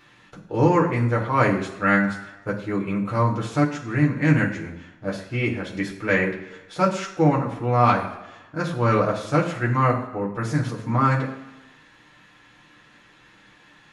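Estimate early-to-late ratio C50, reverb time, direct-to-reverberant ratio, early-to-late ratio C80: 9.0 dB, 1.0 s, -2.5 dB, 11.5 dB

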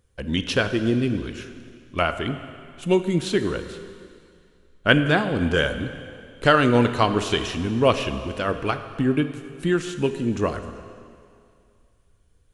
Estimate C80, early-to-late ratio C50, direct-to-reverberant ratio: 11.0 dB, 10.0 dB, 9.0 dB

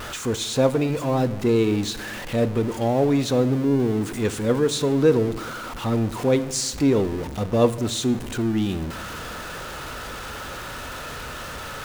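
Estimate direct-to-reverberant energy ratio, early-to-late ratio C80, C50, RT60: 12.0 dB, 17.5 dB, 16.5 dB, not exponential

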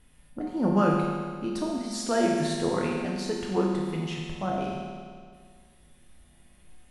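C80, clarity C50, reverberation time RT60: 2.0 dB, 0.5 dB, 1.9 s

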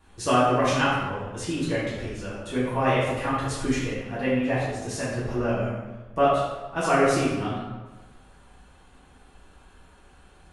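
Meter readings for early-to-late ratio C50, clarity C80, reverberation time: -0.5 dB, 2.5 dB, 1.2 s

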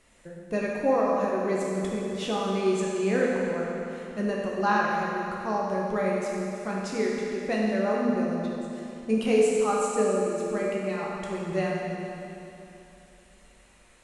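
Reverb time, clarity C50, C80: 2.9 s, -1.5 dB, 0.0 dB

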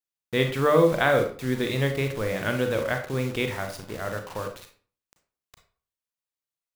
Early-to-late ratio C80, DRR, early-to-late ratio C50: 13.0 dB, 5.0 dB, 8.5 dB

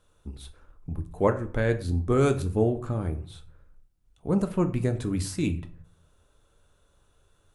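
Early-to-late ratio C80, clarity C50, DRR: 18.5 dB, 14.5 dB, 7.0 dB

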